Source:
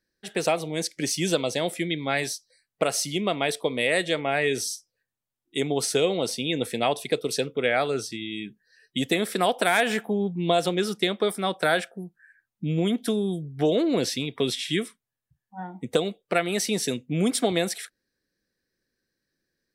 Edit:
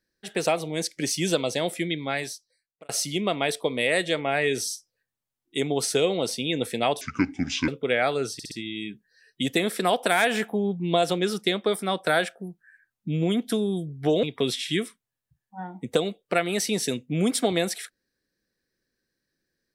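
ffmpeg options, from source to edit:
ffmpeg -i in.wav -filter_complex "[0:a]asplit=8[link_01][link_02][link_03][link_04][link_05][link_06][link_07][link_08];[link_01]atrim=end=2.89,asetpts=PTS-STARTPTS,afade=type=out:start_time=1.87:duration=1.02[link_09];[link_02]atrim=start=2.89:end=7.014,asetpts=PTS-STARTPTS,afade=type=in:duration=0.004:curve=hsin[link_10];[link_03]atrim=start=7.01:end=7.42,asetpts=PTS-STARTPTS,asetrate=26901,aresample=44100[link_11];[link_04]atrim=start=7.416:end=8.132[link_12];[link_05]atrim=start=8.068:end=8.132[link_13];[link_06]atrim=start=8.068:end=8.132[link_14];[link_07]atrim=start=8.068:end=13.792[link_15];[link_08]atrim=start=14.228[link_16];[link_09][link_10]concat=n=2:v=0:a=1[link_17];[link_17][link_11]acrossfade=duration=0.004:curve1=hsin:curve2=hsin[link_18];[link_18][link_12]acrossfade=duration=0.004:curve1=hsin:curve2=hsin[link_19];[link_19][link_13]acrossfade=duration=0.004:curve1=hsin:curve2=hsin[link_20];[link_20][link_14]acrossfade=duration=0.004:curve1=hsin:curve2=hsin[link_21];[link_21][link_15]acrossfade=duration=0.004:curve1=hsin:curve2=hsin[link_22];[link_22][link_16]acrossfade=duration=0.004:curve1=hsin:curve2=hsin" out.wav

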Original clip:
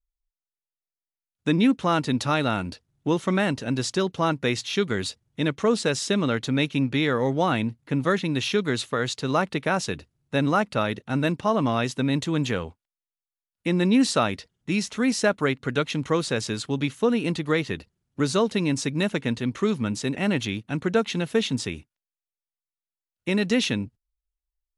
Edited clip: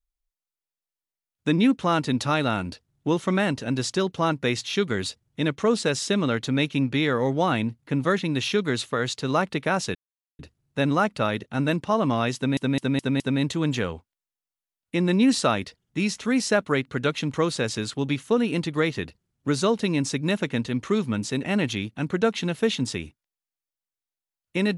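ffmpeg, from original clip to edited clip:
ffmpeg -i in.wav -filter_complex "[0:a]asplit=6[link_01][link_02][link_03][link_04][link_05][link_06];[link_01]atrim=end=9.95,asetpts=PTS-STARTPTS,afade=type=out:start_time=9.946:duration=0.004:curve=hsin,apad=pad_dur=0.44[link_07];[link_02]atrim=start=9.95:end=12.132,asetpts=PTS-STARTPTS,afade=type=in:duration=0.004:curve=hsin[link_08];[link_03]atrim=start=11.918:end=12.132[link_09];[link_04]atrim=start=11.918:end=12.132[link_10];[link_05]atrim=start=11.918:end=12.132[link_11];[link_06]atrim=start=11.918[link_12];[link_07][link_08]concat=n=2:v=0:a=1[link_13];[link_13][link_09]acrossfade=duration=0.004:curve1=hsin:curve2=hsin[link_14];[link_14][link_10]acrossfade=duration=0.004:curve1=hsin:curve2=hsin[link_15];[link_15][link_11]acrossfade=duration=0.004:curve1=hsin:curve2=hsin[link_16];[link_16][link_12]acrossfade=duration=0.004:curve1=hsin:curve2=hsin" out.wav

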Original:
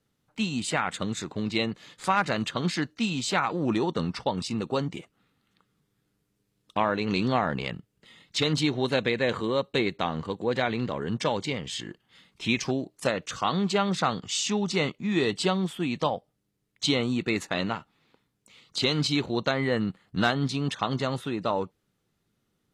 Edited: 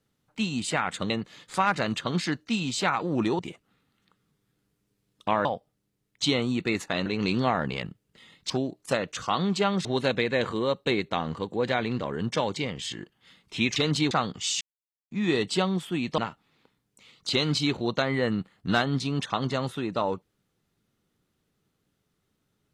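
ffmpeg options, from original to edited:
ffmpeg -i in.wav -filter_complex "[0:a]asplit=12[link_01][link_02][link_03][link_04][link_05][link_06][link_07][link_08][link_09][link_10][link_11][link_12];[link_01]atrim=end=1.102[link_13];[link_02]atrim=start=1.598:end=3.892[link_14];[link_03]atrim=start=4.878:end=6.942[link_15];[link_04]atrim=start=16.058:end=17.672[link_16];[link_05]atrim=start=6.938:end=8.382[link_17];[link_06]atrim=start=12.638:end=13.992[link_18];[link_07]atrim=start=8.728:end=12.642[link_19];[link_08]atrim=start=8.378:end=8.732[link_20];[link_09]atrim=start=13.988:end=14.49,asetpts=PTS-STARTPTS,afade=type=out:start_time=0.498:duration=0.004:curve=hsin[link_21];[link_10]atrim=start=14.49:end=14.99,asetpts=PTS-STARTPTS,volume=0[link_22];[link_11]atrim=start=14.99:end=16.062,asetpts=PTS-STARTPTS,afade=type=in:duration=0.004:curve=hsin[link_23];[link_12]atrim=start=17.668[link_24];[link_13][link_14]acrossfade=duration=0.004:curve1=hsin:curve2=hsin[link_25];[link_25][link_15]acrossfade=duration=0.004:curve1=hsin:curve2=hsin[link_26];[link_26][link_16]acrossfade=duration=0.004:curve1=hsin:curve2=hsin[link_27];[link_27][link_17]acrossfade=duration=0.004:curve1=hsin:curve2=hsin[link_28];[link_28][link_18]acrossfade=duration=0.004:curve1=hsin:curve2=hsin[link_29];[link_29][link_19]acrossfade=duration=0.004:curve1=hsin:curve2=hsin[link_30];[link_30][link_20]acrossfade=duration=0.004:curve1=hsin:curve2=hsin[link_31];[link_21][link_22][link_23]concat=n=3:v=0:a=1[link_32];[link_31][link_32]acrossfade=duration=0.004:curve1=hsin:curve2=hsin[link_33];[link_33][link_24]acrossfade=duration=0.004:curve1=hsin:curve2=hsin" out.wav

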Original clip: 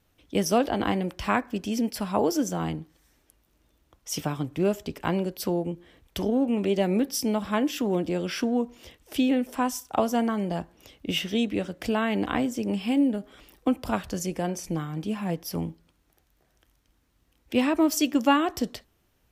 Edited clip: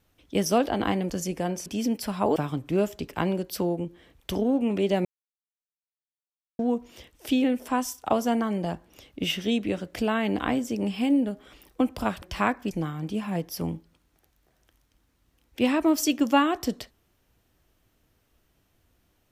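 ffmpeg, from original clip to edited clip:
ffmpeg -i in.wav -filter_complex "[0:a]asplit=8[link_01][link_02][link_03][link_04][link_05][link_06][link_07][link_08];[link_01]atrim=end=1.102[link_09];[link_02]atrim=start=14.088:end=14.652[link_10];[link_03]atrim=start=1.588:end=2.292[link_11];[link_04]atrim=start=4.228:end=6.92,asetpts=PTS-STARTPTS,afade=type=out:start_time=2.688:duration=0.004:curve=hsin[link_12];[link_05]atrim=start=6.92:end=8.46,asetpts=PTS-STARTPTS,volume=0[link_13];[link_06]atrim=start=8.46:end=14.092,asetpts=PTS-STARTPTS,afade=type=in:duration=0.004:curve=hsin[link_14];[link_07]atrim=start=1.098:end=1.592[link_15];[link_08]atrim=start=14.648[link_16];[link_09][link_10]acrossfade=duration=0.004:curve1=hsin:curve2=hsin[link_17];[link_17][link_11]acrossfade=duration=0.004:curve1=hsin:curve2=hsin[link_18];[link_12][link_13][link_14]concat=n=3:v=0:a=1[link_19];[link_18][link_19]acrossfade=duration=0.004:curve1=hsin:curve2=hsin[link_20];[link_20][link_15]acrossfade=duration=0.004:curve1=hsin:curve2=hsin[link_21];[link_21][link_16]acrossfade=duration=0.004:curve1=hsin:curve2=hsin" out.wav

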